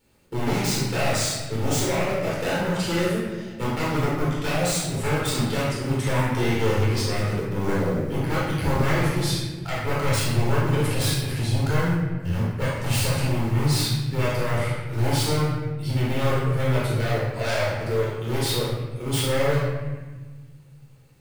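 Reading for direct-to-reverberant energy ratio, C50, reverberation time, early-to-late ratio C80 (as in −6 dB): −8.0 dB, −1.5 dB, 1.3 s, 2.5 dB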